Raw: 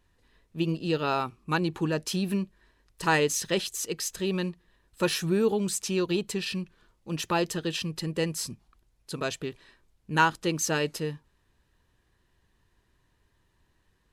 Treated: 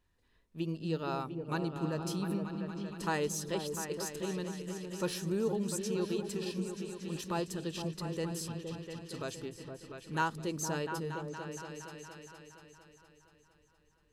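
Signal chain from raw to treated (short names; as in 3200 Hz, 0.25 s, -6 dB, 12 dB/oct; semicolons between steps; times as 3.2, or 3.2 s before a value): repeats that get brighter 0.233 s, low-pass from 200 Hz, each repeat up 2 oct, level -3 dB; dynamic EQ 2400 Hz, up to -6 dB, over -43 dBFS, Q 1; gain -8 dB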